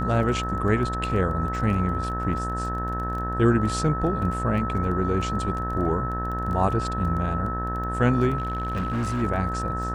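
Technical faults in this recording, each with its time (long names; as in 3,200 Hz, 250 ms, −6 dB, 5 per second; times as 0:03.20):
mains buzz 60 Hz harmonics 31 −30 dBFS
surface crackle 17 per second −32 dBFS
whistle 1,300 Hz −29 dBFS
0:08.37–0:09.23: clipping −22.5 dBFS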